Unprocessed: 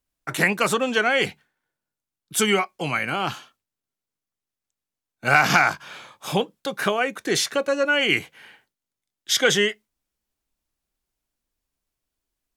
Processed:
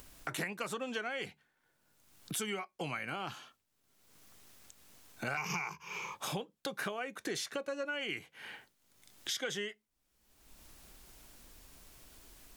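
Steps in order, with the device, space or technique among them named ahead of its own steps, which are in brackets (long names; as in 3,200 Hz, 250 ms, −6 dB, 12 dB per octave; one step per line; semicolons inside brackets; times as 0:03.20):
0:05.37–0:06.15: EQ curve with evenly spaced ripples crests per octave 0.78, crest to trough 18 dB
upward and downward compression (upward compression, threshold −26 dBFS; downward compressor 6 to 1, threshold −30 dBFS, peak gain reduction 18.5 dB)
level −5.5 dB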